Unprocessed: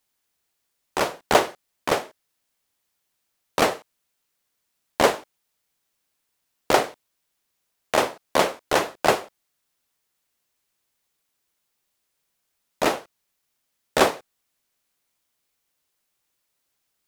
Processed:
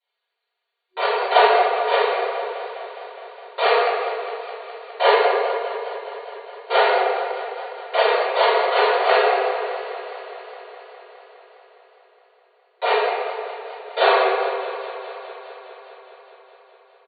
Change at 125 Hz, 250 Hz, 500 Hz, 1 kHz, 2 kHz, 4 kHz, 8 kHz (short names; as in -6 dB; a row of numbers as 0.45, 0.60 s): under -40 dB, n/a, +7.0 dB, +7.0 dB, +6.0 dB, +4.5 dB, under -40 dB